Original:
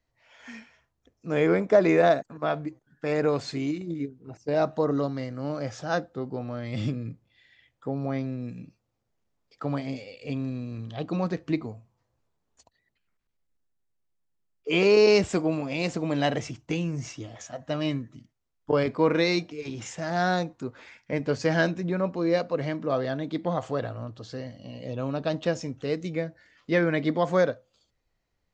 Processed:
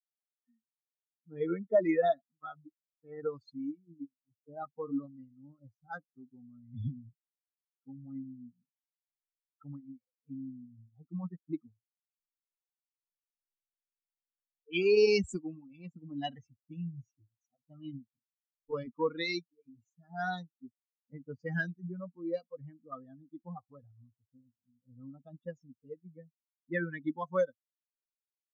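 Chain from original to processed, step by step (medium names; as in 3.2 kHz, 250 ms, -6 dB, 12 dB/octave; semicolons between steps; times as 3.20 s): expander on every frequency bin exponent 3; level-controlled noise filter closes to 550 Hz, open at -26.5 dBFS; dynamic bell 850 Hz, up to -3 dB, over -45 dBFS, Q 2; trim -2 dB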